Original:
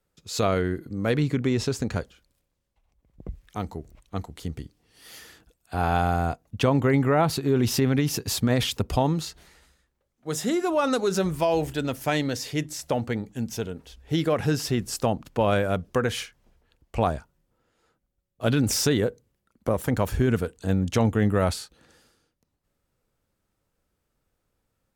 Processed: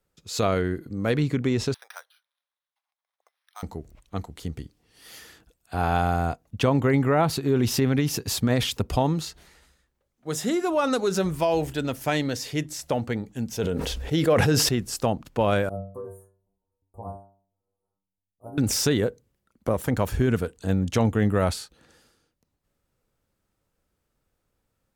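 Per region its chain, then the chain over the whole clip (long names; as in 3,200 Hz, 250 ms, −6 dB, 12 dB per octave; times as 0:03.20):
0:01.74–0:03.63: Bessel high-pass filter 1,300 Hz, order 6 + high shelf with overshoot 3,600 Hz +8.5 dB, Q 3 + bad sample-rate conversion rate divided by 6×, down filtered, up hold
0:13.49–0:14.69: parametric band 510 Hz +5.5 dB 0.35 octaves + level that may fall only so fast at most 21 dB per second
0:15.69–0:18.58: elliptic band-stop filter 960–9,800 Hz, stop band 50 dB + stiff-string resonator 95 Hz, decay 0.53 s, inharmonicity 0.002
whole clip: no processing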